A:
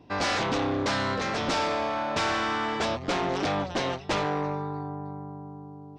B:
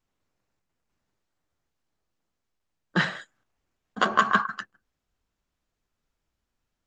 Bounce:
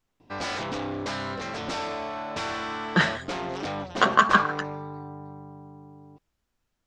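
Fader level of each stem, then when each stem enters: −4.5, +2.5 decibels; 0.20, 0.00 seconds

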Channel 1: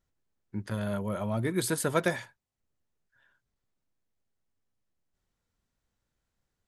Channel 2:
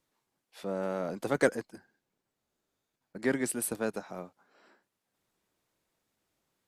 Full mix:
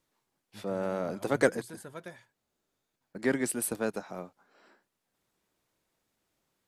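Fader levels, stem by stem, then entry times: −17.0, +1.0 decibels; 0.00, 0.00 seconds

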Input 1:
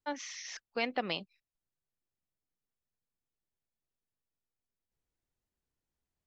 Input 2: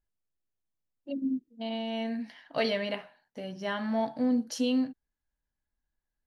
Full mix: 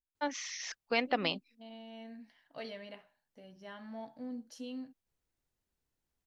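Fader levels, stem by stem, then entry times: +2.5, −15.5 decibels; 0.15, 0.00 seconds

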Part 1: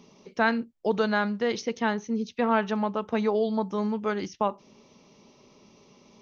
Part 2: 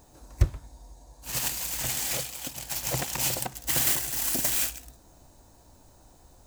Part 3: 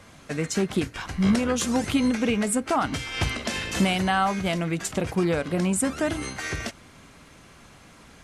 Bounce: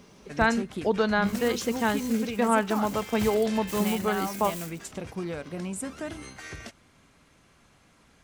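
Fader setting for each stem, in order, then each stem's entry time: +0.5, −14.0, −10.0 decibels; 0.00, 0.00, 0.00 seconds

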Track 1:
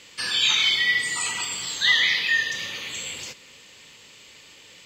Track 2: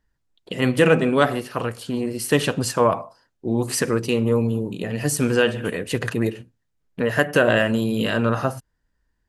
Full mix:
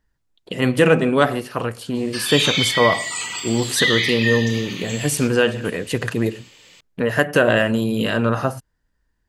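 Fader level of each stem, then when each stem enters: 0.0, +1.5 decibels; 1.95, 0.00 seconds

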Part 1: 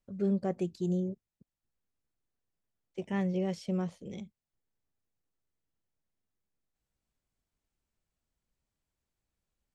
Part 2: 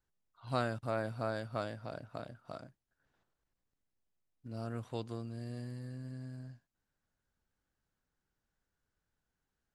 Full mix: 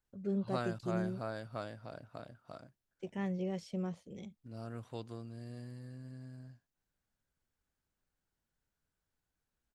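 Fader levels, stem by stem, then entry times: −5.5, −4.0 decibels; 0.05, 0.00 seconds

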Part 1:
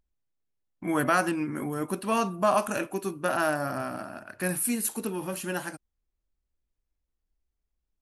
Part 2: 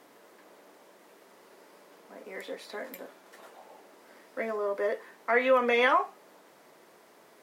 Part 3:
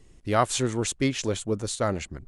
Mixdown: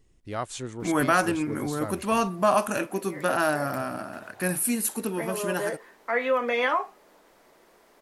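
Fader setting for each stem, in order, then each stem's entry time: +2.0, −1.0, −9.5 decibels; 0.00, 0.80, 0.00 seconds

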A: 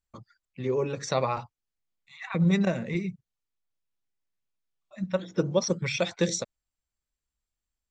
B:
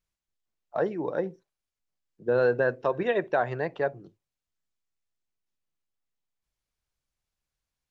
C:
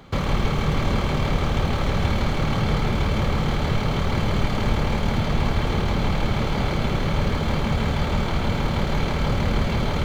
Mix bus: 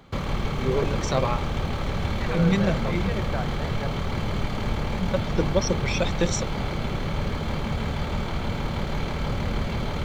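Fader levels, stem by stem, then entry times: +1.0, −8.5, −5.0 decibels; 0.00, 0.00, 0.00 seconds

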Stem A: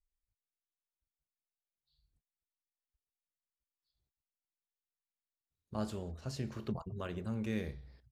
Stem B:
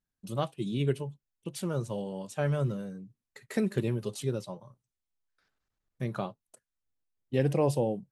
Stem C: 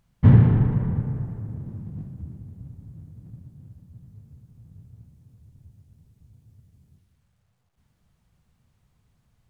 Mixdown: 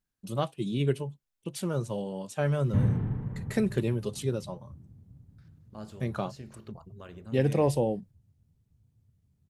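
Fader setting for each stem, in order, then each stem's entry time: −5.5, +1.5, −12.0 decibels; 0.00, 0.00, 2.50 seconds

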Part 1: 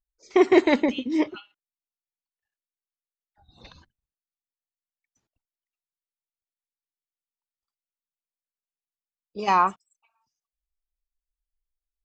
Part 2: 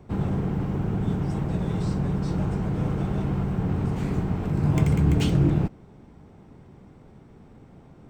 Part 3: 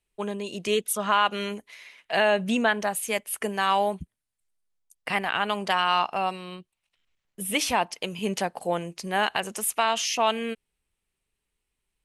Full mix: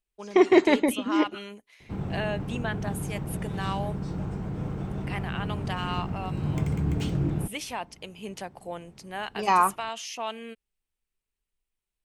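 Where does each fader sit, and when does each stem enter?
−1.0, −6.5, −10.0 decibels; 0.00, 1.80, 0.00 seconds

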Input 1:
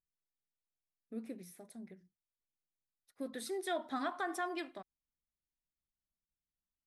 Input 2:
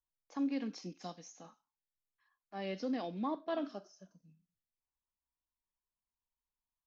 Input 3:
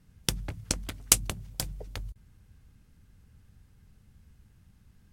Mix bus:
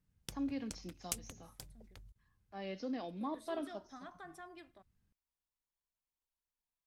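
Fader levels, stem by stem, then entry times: −14.0, −3.5, −18.5 decibels; 0.00, 0.00, 0.00 seconds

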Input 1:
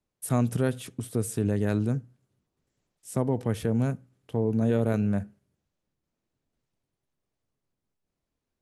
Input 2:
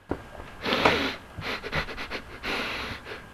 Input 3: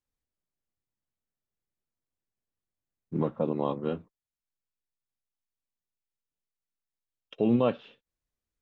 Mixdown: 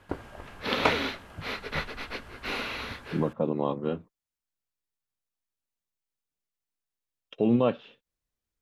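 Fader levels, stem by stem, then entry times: muted, −3.0 dB, +1.0 dB; muted, 0.00 s, 0.00 s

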